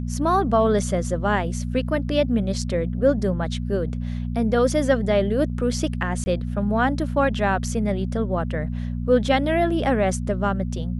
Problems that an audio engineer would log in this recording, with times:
hum 60 Hz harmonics 4 -27 dBFS
6.24–6.26 s: dropout 20 ms

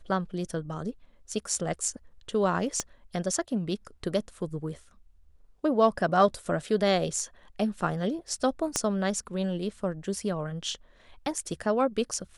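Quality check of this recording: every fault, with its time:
2.80 s: pop -14 dBFS
8.76 s: pop -11 dBFS

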